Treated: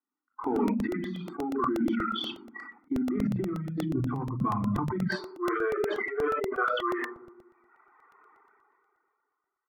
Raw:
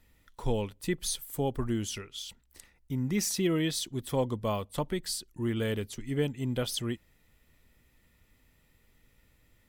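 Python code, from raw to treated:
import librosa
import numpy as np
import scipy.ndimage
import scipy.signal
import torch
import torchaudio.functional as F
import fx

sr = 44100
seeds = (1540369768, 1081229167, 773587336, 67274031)

y = fx.law_mismatch(x, sr, coded='A')
y = fx.peak_eq(y, sr, hz=550.0, db=-10.5, octaves=0.56)
y = y + 0.84 * np.pad(y, (int(0.9 * sr / 1000.0), 0))[:len(y)]
y = fx.room_shoebox(y, sr, seeds[0], volume_m3=2200.0, walls='furnished', distance_m=3.6)
y = fx.dereverb_blind(y, sr, rt60_s=1.1)
y = fx.cheby1_bandpass(y, sr, low_hz=fx.steps((0.0, 250.0), (3.25, 120.0), (5.07, 390.0)), high_hz=1600.0, order=4)
y = fx.noise_reduce_blind(y, sr, reduce_db=25)
y = fx.over_compress(y, sr, threshold_db=-37.0, ratio=-1.0)
y = fx.buffer_crackle(y, sr, first_s=0.32, period_s=0.12, block=64, kind='repeat')
y = fx.sustainer(y, sr, db_per_s=22.0)
y = y * librosa.db_to_amplitude(6.5)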